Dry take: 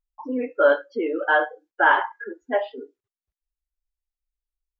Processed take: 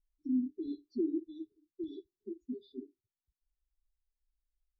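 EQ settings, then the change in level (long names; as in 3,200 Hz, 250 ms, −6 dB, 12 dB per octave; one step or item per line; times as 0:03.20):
linear-phase brick-wall band-stop 400–3,400 Hz
high-frequency loss of the air 110 metres
low-shelf EQ 220 Hz +10.5 dB
−7.0 dB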